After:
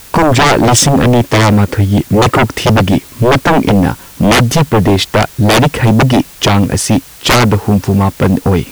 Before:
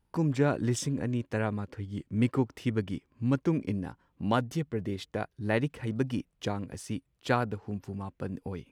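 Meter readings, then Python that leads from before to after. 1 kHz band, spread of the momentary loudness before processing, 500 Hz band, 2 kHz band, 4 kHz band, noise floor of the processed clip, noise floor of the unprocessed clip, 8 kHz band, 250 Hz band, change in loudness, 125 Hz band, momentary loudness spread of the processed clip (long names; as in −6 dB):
+24.5 dB, 10 LU, +21.0 dB, +23.5 dB, +29.0 dB, −35 dBFS, −75 dBFS, +28.0 dB, +20.0 dB, +21.5 dB, +21.5 dB, 4 LU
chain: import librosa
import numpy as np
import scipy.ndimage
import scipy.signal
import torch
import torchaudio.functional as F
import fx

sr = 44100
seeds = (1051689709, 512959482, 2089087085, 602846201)

y = fx.fold_sine(x, sr, drive_db=18, ceiling_db=-11.5)
y = fx.dmg_noise_colour(y, sr, seeds[0], colour='white', level_db=-43.0)
y = y * 10.0 ** (7.5 / 20.0)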